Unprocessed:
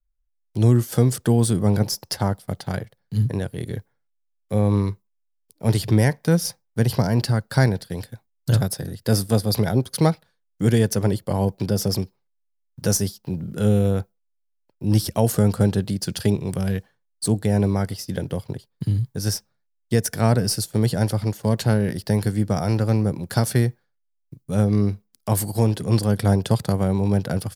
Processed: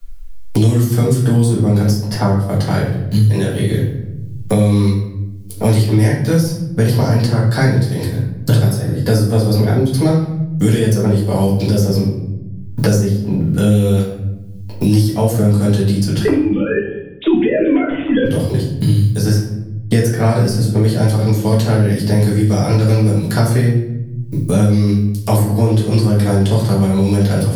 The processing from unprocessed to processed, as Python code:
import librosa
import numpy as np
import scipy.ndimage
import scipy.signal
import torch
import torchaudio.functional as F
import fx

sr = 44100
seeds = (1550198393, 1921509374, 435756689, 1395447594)

y = fx.sine_speech(x, sr, at=(16.25, 18.25))
y = fx.room_shoebox(y, sr, seeds[0], volume_m3=100.0, walls='mixed', distance_m=1.8)
y = fx.band_squash(y, sr, depth_pct=100)
y = y * librosa.db_to_amplitude(-3.5)